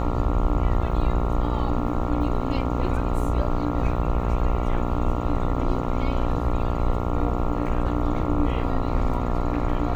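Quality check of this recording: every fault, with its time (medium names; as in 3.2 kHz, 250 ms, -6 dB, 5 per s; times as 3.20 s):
buzz 60 Hz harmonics 23 -27 dBFS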